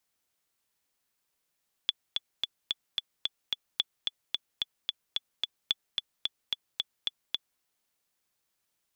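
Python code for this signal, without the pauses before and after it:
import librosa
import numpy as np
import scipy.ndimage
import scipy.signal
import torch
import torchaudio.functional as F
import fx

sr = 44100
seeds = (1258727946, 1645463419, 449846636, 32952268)

y = fx.click_track(sr, bpm=220, beats=7, bars=3, hz=3440.0, accent_db=3.5, level_db=-12.0)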